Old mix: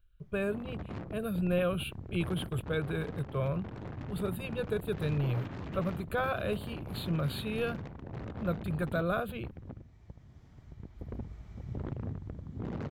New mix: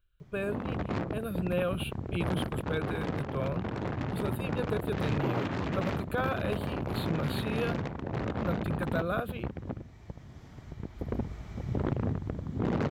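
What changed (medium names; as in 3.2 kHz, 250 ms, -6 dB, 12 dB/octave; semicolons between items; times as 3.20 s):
background +11.0 dB; master: add bass shelf 140 Hz -8 dB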